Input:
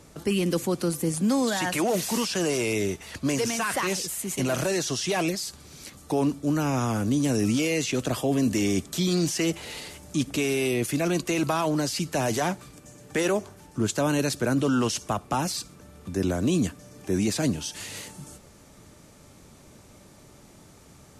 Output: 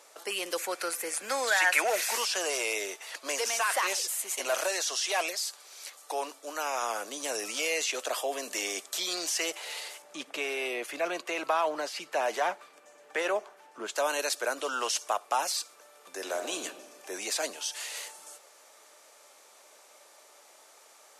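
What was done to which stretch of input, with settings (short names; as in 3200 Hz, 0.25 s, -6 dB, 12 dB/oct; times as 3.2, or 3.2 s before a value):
0.59–2.16 spectral gain 1300–2700 Hz +8 dB
4.68–6.82 HPF 350 Hz 6 dB/oct
10.02–13.96 tone controls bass +9 dB, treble -12 dB
16.12–16.63 reverb throw, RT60 1.3 s, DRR 6 dB
whole clip: HPF 540 Hz 24 dB/oct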